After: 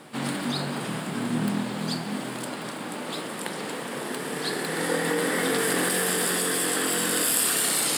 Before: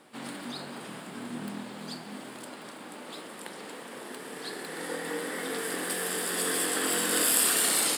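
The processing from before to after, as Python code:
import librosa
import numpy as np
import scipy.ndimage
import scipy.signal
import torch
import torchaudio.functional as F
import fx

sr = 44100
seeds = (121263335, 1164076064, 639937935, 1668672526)

p1 = fx.peak_eq(x, sr, hz=140.0, db=8.5, octaves=0.73)
p2 = fx.over_compress(p1, sr, threshold_db=-33.0, ratio=-0.5)
y = p1 + (p2 * librosa.db_to_amplitude(2.0))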